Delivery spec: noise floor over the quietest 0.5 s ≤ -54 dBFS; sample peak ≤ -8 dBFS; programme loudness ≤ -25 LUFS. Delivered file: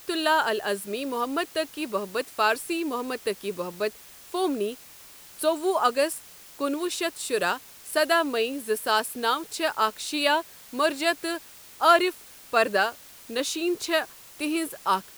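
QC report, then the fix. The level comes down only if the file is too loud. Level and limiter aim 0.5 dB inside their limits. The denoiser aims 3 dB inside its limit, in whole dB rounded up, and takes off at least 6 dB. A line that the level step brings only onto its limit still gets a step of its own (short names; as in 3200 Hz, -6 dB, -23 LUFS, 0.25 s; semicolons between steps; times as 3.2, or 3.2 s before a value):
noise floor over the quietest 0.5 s -48 dBFS: fail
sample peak -7.5 dBFS: fail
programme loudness -26.5 LUFS: OK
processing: denoiser 9 dB, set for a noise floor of -48 dBFS; limiter -8.5 dBFS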